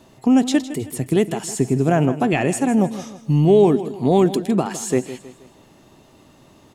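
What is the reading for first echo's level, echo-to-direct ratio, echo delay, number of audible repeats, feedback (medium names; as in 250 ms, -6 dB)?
-14.0 dB, -13.0 dB, 159 ms, 3, 41%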